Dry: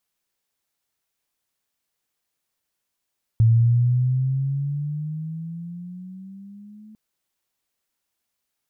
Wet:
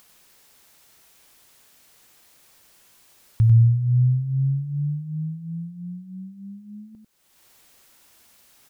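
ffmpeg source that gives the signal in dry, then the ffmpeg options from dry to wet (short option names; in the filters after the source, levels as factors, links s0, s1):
-f lavfi -i "aevalsrc='pow(10,(-11.5-30.5*t/3.55)/20)*sin(2*PI*112*3.55/(11.5*log(2)/12)*(exp(11.5*log(2)/12*t/3.55)-1))':d=3.55:s=44100"
-af "acompressor=mode=upward:threshold=0.0141:ratio=2.5,aecho=1:1:96:0.447"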